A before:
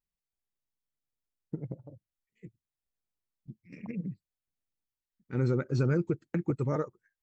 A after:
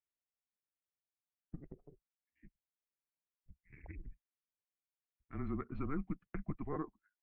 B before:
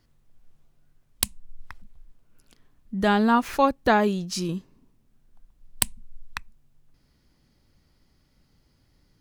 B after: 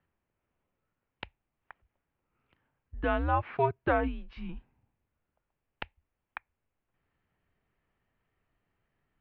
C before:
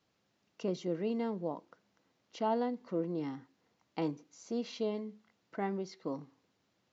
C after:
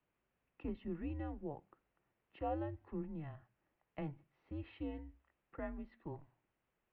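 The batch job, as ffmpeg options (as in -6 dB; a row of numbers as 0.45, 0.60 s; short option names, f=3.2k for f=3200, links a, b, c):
-af "asubboost=boost=6.5:cutoff=90,highpass=f=190:t=q:w=0.5412,highpass=f=190:t=q:w=1.307,lowpass=f=2.9k:t=q:w=0.5176,lowpass=f=2.9k:t=q:w=0.7071,lowpass=f=2.9k:t=q:w=1.932,afreqshift=-150,volume=-6dB"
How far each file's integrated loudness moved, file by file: -11.5, -6.0, -8.0 LU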